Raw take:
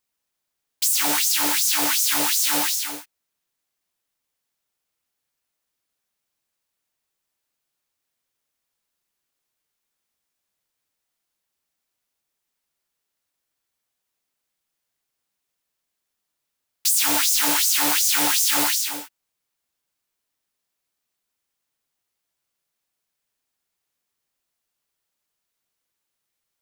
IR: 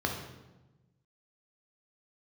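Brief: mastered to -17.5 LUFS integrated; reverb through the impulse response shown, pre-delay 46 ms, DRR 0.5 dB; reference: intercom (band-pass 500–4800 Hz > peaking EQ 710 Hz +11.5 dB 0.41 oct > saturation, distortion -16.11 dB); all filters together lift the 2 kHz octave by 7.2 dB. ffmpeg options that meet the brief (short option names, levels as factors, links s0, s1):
-filter_complex "[0:a]equalizer=f=2000:t=o:g=9,asplit=2[s0][s1];[1:a]atrim=start_sample=2205,adelay=46[s2];[s1][s2]afir=irnorm=-1:irlink=0,volume=0.376[s3];[s0][s3]amix=inputs=2:normalize=0,highpass=500,lowpass=4800,equalizer=f=710:t=o:w=0.41:g=11.5,asoftclip=threshold=0.224,volume=1.33"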